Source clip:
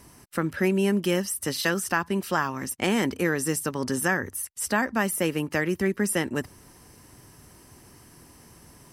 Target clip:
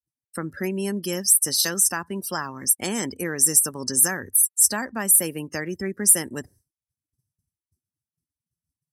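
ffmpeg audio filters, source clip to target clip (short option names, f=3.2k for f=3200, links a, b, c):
-af "afftdn=nr=29:nf=-38,aexciter=amount=5.9:drive=7.1:freq=4.1k,agate=range=-33dB:threshold=-45dB:ratio=3:detection=peak,volume=-4dB"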